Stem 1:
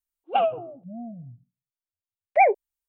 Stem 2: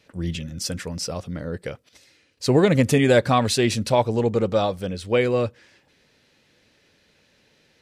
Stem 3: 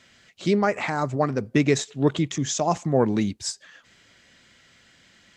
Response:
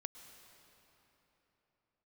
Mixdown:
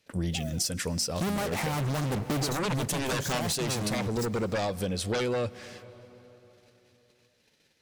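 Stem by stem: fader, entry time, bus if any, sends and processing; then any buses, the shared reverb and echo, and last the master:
-8.5 dB, 0.00 s, no send, Bessel low-pass 580 Hz; limiter -23 dBFS, peak gain reduction 8 dB; short-mantissa float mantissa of 2-bit
-12.5 dB, 0.00 s, send -11 dB, sine folder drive 12 dB, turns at -5 dBFS; gate -42 dBFS, range -17 dB
-1.5 dB, 0.75 s, send -9.5 dB, tilt -3.5 dB/oct; fuzz box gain 32 dB, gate -35 dBFS; auto duck -9 dB, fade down 1.80 s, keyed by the second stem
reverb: on, pre-delay 0.1 s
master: high shelf 5500 Hz +10 dB; compressor 10:1, threshold -27 dBFS, peak gain reduction 14 dB

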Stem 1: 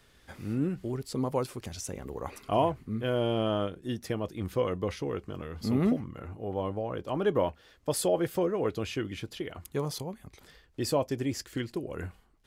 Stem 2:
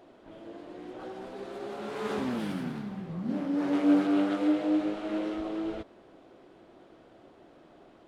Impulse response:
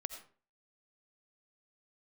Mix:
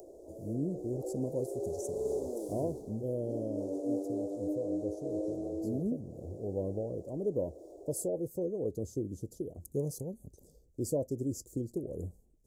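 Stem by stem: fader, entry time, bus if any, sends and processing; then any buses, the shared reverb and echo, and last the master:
-6.0 dB, 0.00 s, no send, dry
+2.5 dB, 0.00 s, no send, steep high-pass 340 Hz 36 dB/oct; upward compressor, threshold -47 dBFS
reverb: off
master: elliptic band-stop 550–6700 Hz, stop band 70 dB; vocal rider within 5 dB 0.5 s

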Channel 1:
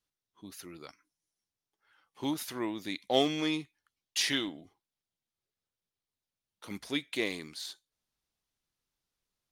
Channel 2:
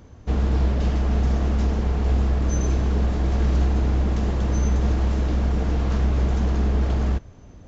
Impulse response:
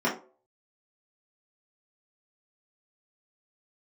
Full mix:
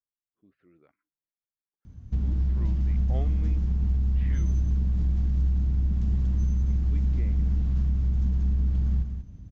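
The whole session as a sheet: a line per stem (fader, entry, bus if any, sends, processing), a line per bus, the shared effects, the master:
-11.5 dB, 0.00 s, no send, no echo send, rotary speaker horn 0.6 Hz; LPF 2100 Hz 24 dB/oct
+1.5 dB, 1.85 s, no send, echo send -7.5 dB, EQ curve 180 Hz 0 dB, 470 Hz -21 dB, 5000 Hz -14 dB; compressor, threshold -24 dBFS, peak gain reduction 8.5 dB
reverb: off
echo: echo 0.187 s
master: dry

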